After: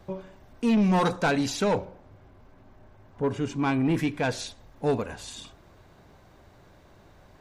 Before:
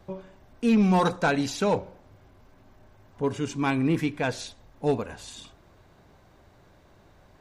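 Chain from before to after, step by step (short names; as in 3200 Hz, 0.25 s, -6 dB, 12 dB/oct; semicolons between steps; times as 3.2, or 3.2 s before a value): 1.85–3.89 high shelf 3500 Hz -9 dB; soft clip -19 dBFS, distortion -15 dB; gain +2 dB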